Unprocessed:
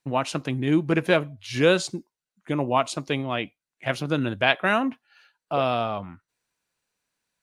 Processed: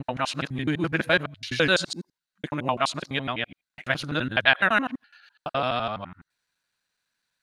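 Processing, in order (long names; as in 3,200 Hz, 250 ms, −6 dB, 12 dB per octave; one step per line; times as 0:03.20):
reversed piece by piece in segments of 84 ms
graphic EQ with 15 bands 400 Hz −4 dB, 1,600 Hz +8 dB, 4,000 Hz +8 dB
level −3 dB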